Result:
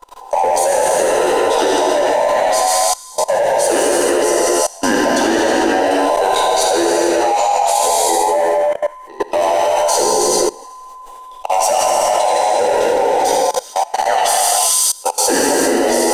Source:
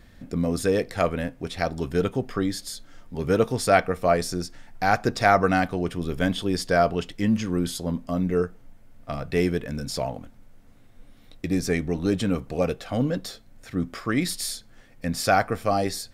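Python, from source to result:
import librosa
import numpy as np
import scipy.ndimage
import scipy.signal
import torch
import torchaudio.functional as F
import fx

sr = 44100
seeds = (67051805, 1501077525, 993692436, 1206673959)

y = fx.band_invert(x, sr, width_hz=1000)
y = fx.high_shelf(y, sr, hz=5200.0, db=5.5)
y = fx.rider(y, sr, range_db=5, speed_s=2.0)
y = fx.graphic_eq(y, sr, hz=(125, 500, 8000), db=(-12, 11, 8))
y = 10.0 ** (-10.5 / 20.0) * np.tanh(y / 10.0 ** (-10.5 / 20.0))
y = fx.echo_wet_highpass(y, sr, ms=80, feedback_pct=61, hz=2200.0, wet_db=-6)
y = fx.rev_gated(y, sr, seeds[0], gate_ms=480, shape='flat', drr_db=-5.0)
y = fx.level_steps(y, sr, step_db=21)
y = F.gain(torch.from_numpy(y), 7.0).numpy()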